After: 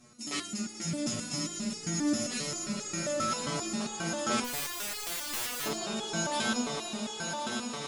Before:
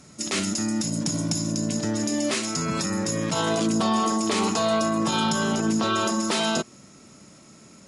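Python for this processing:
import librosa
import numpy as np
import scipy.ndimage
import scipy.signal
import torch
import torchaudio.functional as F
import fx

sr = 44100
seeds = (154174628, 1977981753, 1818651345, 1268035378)

y = fx.doubler(x, sr, ms=13.0, db=-7)
y = fx.echo_swell(y, sr, ms=107, loudest=8, wet_db=-10.0)
y = fx.overflow_wrap(y, sr, gain_db=21.0, at=(4.44, 5.66))
y = fx.resonator_held(y, sr, hz=7.5, low_hz=120.0, high_hz=420.0)
y = y * librosa.db_to_amplitude(2.5)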